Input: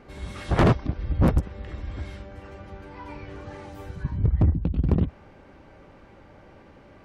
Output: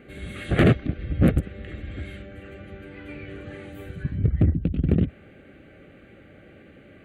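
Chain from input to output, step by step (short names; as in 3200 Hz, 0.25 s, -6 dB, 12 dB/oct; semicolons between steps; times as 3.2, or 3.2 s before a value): HPF 130 Hz 6 dB/oct; fixed phaser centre 2300 Hz, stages 4; gain +5 dB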